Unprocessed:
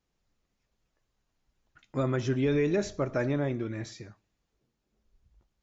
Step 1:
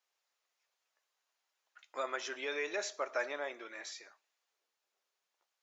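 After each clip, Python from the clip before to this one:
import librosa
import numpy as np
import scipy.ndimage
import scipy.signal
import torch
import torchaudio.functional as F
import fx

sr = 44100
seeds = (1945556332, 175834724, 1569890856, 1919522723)

y = scipy.signal.sosfilt(scipy.signal.bessel(4, 850.0, 'highpass', norm='mag', fs=sr, output='sos'), x)
y = F.gain(torch.from_numpy(y), 1.0).numpy()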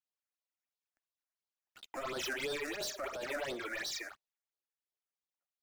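y = fx.over_compress(x, sr, threshold_db=-38.0, ratio=-0.5)
y = fx.leveller(y, sr, passes=5)
y = fx.phaser_stages(y, sr, stages=8, low_hz=120.0, high_hz=2300.0, hz=2.9, feedback_pct=25)
y = F.gain(torch.from_numpy(y), -6.0).numpy()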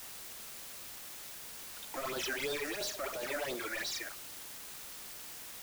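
y = fx.quant_dither(x, sr, seeds[0], bits=8, dither='triangular')
y = F.gain(torch.from_numpy(y), 1.0).numpy()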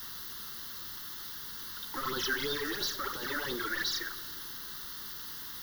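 y = fx.fixed_phaser(x, sr, hz=2400.0, stages=6)
y = fx.rev_schroeder(y, sr, rt60_s=2.9, comb_ms=25, drr_db=14.5)
y = F.gain(torch.from_numpy(y), 7.0).numpy()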